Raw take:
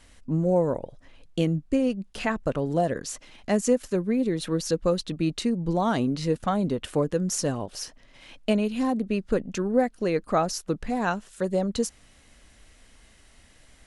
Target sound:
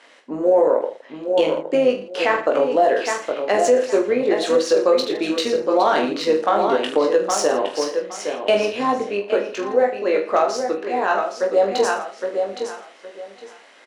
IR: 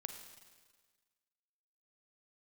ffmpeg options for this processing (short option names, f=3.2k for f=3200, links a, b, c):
-filter_complex "[0:a]highpass=f=380:w=0.5412,highpass=f=380:w=1.3066,aecho=1:1:815|1630|2445:0.422|0.0928|0.0204,asplit=3[a][b][c];[a]afade=t=out:st=9.09:d=0.02[d];[b]flanger=delay=8.3:depth=3.1:regen=-51:speed=1.5:shape=triangular,afade=t=in:st=9.09:d=0.02,afade=t=out:st=11.56:d=0.02[e];[c]afade=t=in:st=11.56:d=0.02[f];[d][e][f]amix=inputs=3:normalize=0,adynamicsmooth=sensitivity=1.5:basefreq=4.1k,tremolo=f=110:d=0.261,aecho=1:1:20|45|76.25|115.3|164.1:0.631|0.398|0.251|0.158|0.1,alimiter=level_in=17.5dB:limit=-1dB:release=50:level=0:latency=1,volume=-6dB"